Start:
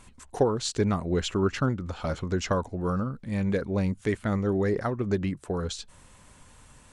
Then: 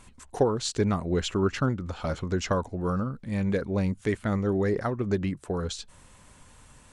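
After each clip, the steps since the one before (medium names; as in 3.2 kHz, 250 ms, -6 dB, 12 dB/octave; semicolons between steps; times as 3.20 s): no audible change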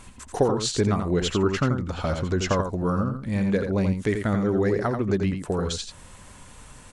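in parallel at +0.5 dB: compression, threshold -33 dBFS, peak gain reduction 15 dB; on the sum: delay 86 ms -6.5 dB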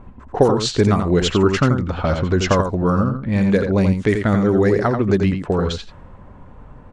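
level-controlled noise filter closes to 760 Hz, open at -17.5 dBFS; trim +7 dB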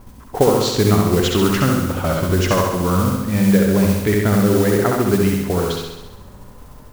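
modulation noise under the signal 16 dB; on a send: flutter echo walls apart 11.4 m, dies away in 0.97 s; on the sum: trim -1.5 dB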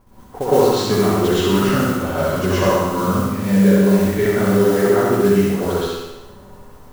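peaking EQ 830 Hz +4 dB 2.9 oct; plate-style reverb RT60 0.61 s, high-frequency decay 0.9×, pre-delay 100 ms, DRR -10 dB; trim -13 dB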